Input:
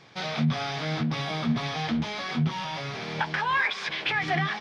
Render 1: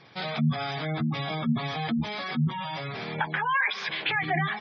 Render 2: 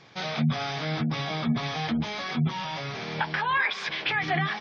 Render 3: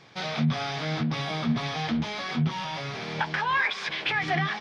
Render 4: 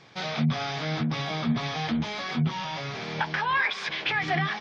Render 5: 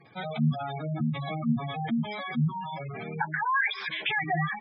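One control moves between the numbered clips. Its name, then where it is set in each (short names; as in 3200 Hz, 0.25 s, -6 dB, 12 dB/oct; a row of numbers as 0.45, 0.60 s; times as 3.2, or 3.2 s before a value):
spectral gate, under each frame's peak: -20, -35, -60, -45, -10 dB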